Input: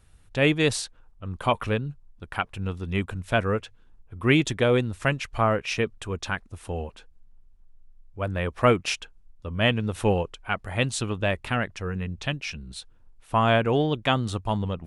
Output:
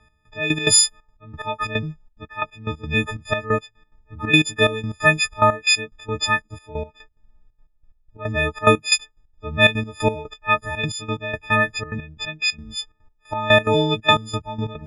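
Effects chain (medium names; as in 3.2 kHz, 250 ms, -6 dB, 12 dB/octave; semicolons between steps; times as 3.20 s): partials quantised in pitch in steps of 6 st; trance gate "x..x..x.xxxx." 180 bpm -12 dB; level-controlled noise filter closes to 2.4 kHz, open at -16.5 dBFS; trim +3.5 dB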